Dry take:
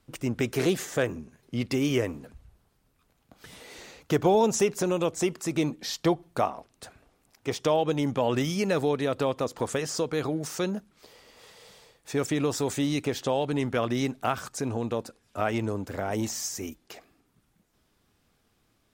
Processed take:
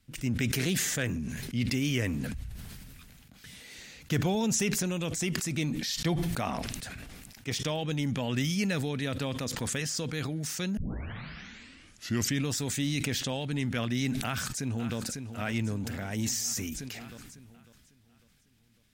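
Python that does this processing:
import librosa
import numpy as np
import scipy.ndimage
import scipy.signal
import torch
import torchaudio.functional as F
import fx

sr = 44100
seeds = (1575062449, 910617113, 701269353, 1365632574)

y = fx.echo_throw(x, sr, start_s=14.2, length_s=0.77, ms=550, feedback_pct=60, wet_db=-11.0)
y = fx.edit(y, sr, fx.tape_start(start_s=10.77, length_s=1.68), tone=tone)
y = fx.band_shelf(y, sr, hz=640.0, db=-11.5, octaves=2.3)
y = fx.sustainer(y, sr, db_per_s=22.0)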